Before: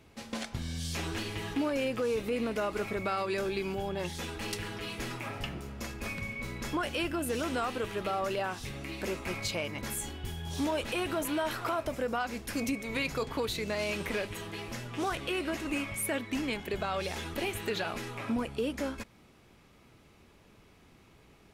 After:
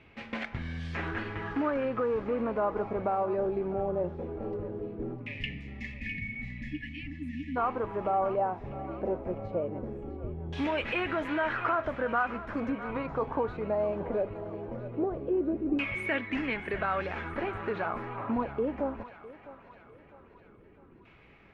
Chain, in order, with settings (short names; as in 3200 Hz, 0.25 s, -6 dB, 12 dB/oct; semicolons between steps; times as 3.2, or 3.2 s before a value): spectral delete 5.15–7.56, 320–1700 Hz; LFO low-pass saw down 0.19 Hz 370–2500 Hz; thinning echo 0.655 s, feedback 59%, high-pass 630 Hz, level -13 dB